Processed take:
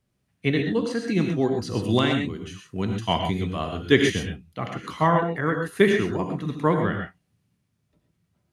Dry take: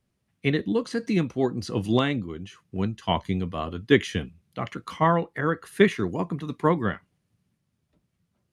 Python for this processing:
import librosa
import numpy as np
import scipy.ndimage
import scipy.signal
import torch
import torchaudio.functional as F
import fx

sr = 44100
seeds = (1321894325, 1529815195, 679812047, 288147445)

y = fx.high_shelf(x, sr, hz=4000.0, db=7.5, at=(1.89, 4.1))
y = fx.rev_gated(y, sr, seeds[0], gate_ms=150, shape='rising', drr_db=3.0)